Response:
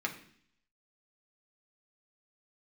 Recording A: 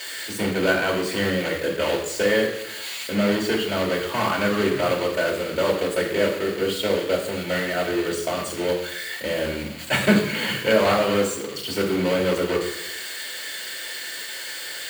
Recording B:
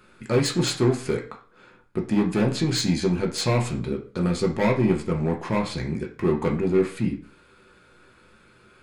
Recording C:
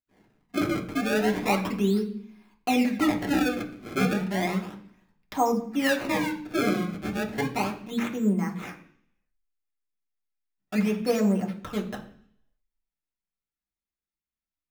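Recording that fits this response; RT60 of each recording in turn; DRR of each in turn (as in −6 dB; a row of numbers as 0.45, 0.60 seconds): C; 0.90, 0.40, 0.60 seconds; −0.5, −0.5, 0.0 decibels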